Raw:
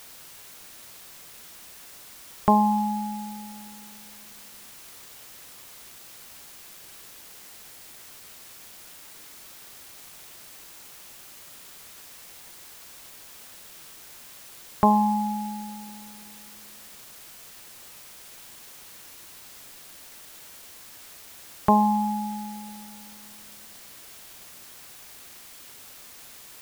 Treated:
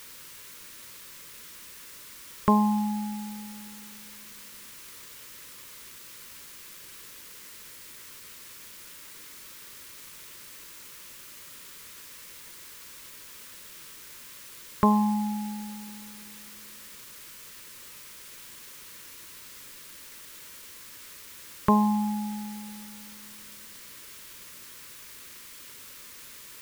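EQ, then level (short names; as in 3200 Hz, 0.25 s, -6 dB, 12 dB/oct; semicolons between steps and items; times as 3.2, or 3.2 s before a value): Butterworth band-stop 730 Hz, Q 2.4; bell 2000 Hz +2 dB; 0.0 dB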